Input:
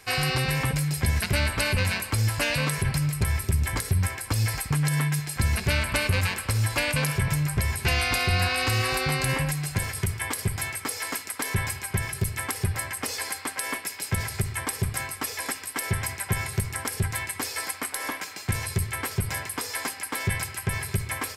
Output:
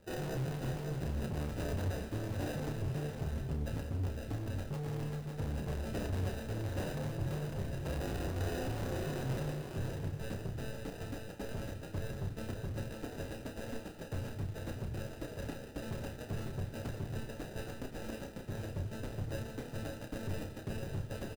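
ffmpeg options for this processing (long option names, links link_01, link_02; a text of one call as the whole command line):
ffmpeg -i in.wav -filter_complex "[0:a]lowpass=frequency=2100:poles=1,bandreject=frequency=60:width_type=h:width=6,bandreject=frequency=120:width_type=h:width=6,bandreject=frequency=180:width_type=h:width=6,acrossover=split=580[link_01][link_02];[link_02]acrusher=samples=40:mix=1:aa=0.000001[link_03];[link_01][link_03]amix=inputs=2:normalize=0,asoftclip=type=hard:threshold=-28dB,flanger=delay=5.2:depth=2:regen=-73:speed=0.87:shape=sinusoidal,asplit=2[link_04][link_05];[link_05]acrusher=bits=4:mode=log:mix=0:aa=0.000001,volume=-5.5dB[link_06];[link_04][link_06]amix=inputs=2:normalize=0,asplit=2[link_07][link_08];[link_08]adelay=31,volume=-7dB[link_09];[link_07][link_09]amix=inputs=2:normalize=0,aecho=1:1:552:0.562,volume=-6.5dB" out.wav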